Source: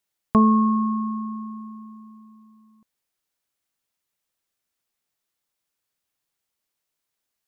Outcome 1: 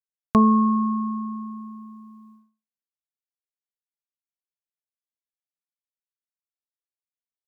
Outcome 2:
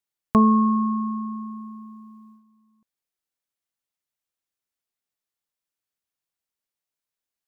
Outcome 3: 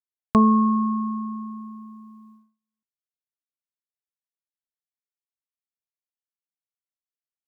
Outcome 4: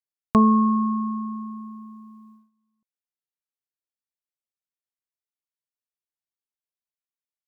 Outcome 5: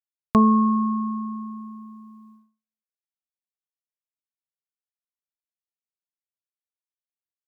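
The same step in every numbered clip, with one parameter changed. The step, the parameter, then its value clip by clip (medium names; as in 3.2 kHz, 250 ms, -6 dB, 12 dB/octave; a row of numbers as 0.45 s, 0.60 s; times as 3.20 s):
gate, range: -59 dB, -8 dB, -35 dB, -20 dB, -47 dB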